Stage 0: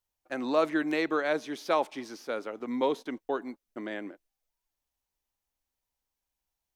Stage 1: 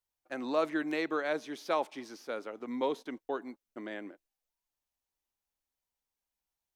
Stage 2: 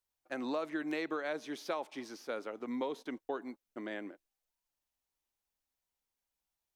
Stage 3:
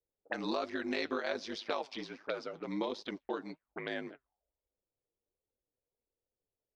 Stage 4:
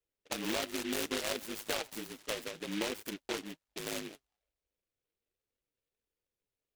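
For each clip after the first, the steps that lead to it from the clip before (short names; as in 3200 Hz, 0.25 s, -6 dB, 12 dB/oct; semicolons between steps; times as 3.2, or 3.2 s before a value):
low shelf 88 Hz -5.5 dB; gain -4 dB
compressor 10:1, threshold -32 dBFS, peak gain reduction 9 dB
ring modulator 52 Hz; flange 1.3 Hz, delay 1.5 ms, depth 6.6 ms, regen +55%; envelope low-pass 470–5000 Hz up, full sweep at -45 dBFS; gain +7.5 dB
noise-modulated delay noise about 2400 Hz, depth 0.21 ms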